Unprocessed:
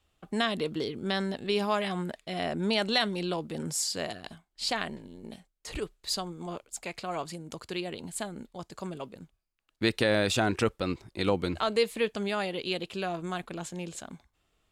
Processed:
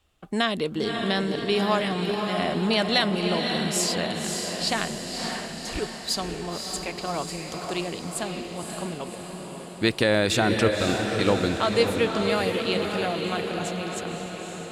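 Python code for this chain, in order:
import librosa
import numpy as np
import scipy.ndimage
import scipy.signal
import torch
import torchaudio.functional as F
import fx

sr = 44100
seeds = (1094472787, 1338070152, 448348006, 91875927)

y = fx.echo_diffused(x, sr, ms=559, feedback_pct=60, wet_db=-4.5)
y = y * 10.0 ** (4.0 / 20.0)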